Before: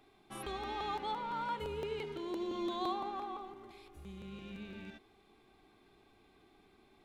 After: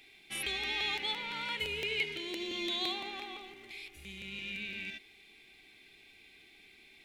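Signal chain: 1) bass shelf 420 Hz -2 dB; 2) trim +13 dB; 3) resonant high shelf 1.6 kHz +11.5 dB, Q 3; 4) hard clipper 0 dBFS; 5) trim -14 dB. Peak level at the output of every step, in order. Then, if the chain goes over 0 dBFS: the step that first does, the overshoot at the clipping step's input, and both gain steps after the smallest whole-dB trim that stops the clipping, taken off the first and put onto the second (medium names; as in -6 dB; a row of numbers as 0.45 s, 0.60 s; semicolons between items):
-26.0 dBFS, -13.0 dBFS, -6.0 dBFS, -6.0 dBFS, -20.0 dBFS; nothing clips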